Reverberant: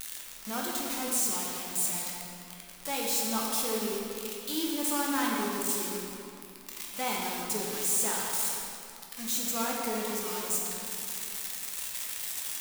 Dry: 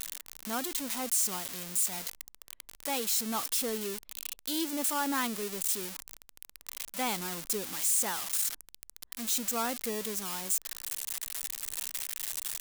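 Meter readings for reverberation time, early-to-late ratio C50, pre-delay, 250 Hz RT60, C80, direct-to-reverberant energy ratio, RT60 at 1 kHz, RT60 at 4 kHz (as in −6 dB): 2.8 s, −0.5 dB, 9 ms, 3.2 s, 0.5 dB, −3.0 dB, 2.7 s, 1.8 s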